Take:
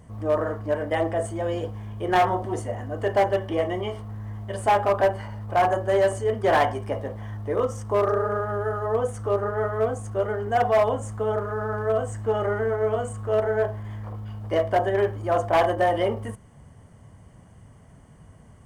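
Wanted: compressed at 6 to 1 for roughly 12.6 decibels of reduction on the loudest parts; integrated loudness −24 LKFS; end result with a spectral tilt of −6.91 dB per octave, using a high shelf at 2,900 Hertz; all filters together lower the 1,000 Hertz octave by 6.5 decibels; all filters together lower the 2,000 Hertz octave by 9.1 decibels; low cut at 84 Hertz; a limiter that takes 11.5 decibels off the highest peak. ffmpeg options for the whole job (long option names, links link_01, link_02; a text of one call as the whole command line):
ffmpeg -i in.wav -af "highpass=84,equalizer=frequency=1000:width_type=o:gain=-8.5,equalizer=frequency=2000:width_type=o:gain=-7,highshelf=frequency=2900:gain=-4,acompressor=threshold=-34dB:ratio=6,volume=20dB,alimiter=limit=-16dB:level=0:latency=1" out.wav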